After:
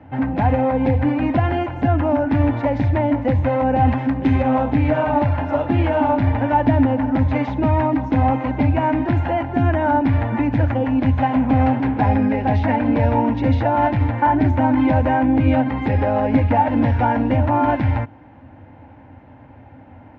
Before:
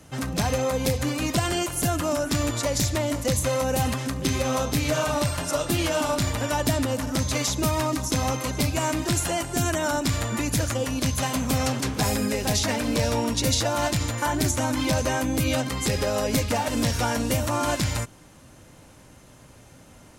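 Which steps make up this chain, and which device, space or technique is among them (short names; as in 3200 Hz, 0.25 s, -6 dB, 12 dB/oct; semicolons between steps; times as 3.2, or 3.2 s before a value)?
3.87–4.43 high shelf 5800 Hz +11 dB; bass cabinet (speaker cabinet 65–2100 Hz, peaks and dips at 90 Hz +10 dB, 170 Hz -7 dB, 270 Hz +8 dB, 400 Hz -6 dB, 840 Hz +10 dB, 1200 Hz -9 dB); gain +5 dB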